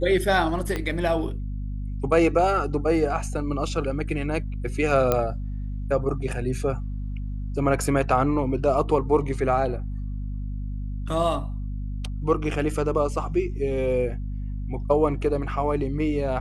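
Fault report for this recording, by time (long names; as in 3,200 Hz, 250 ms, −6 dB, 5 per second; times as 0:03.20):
mains hum 50 Hz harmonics 5 −30 dBFS
0:00.76: click −14 dBFS
0:05.12: click −8 dBFS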